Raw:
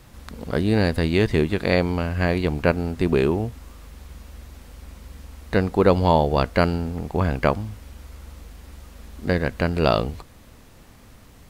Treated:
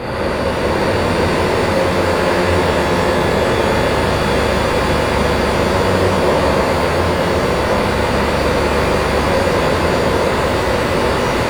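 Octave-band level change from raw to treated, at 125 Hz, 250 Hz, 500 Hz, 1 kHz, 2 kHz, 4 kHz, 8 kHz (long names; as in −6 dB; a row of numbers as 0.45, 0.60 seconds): +5.5 dB, +6.0 dB, +9.0 dB, +12.0 dB, +12.0 dB, +13.0 dB, can't be measured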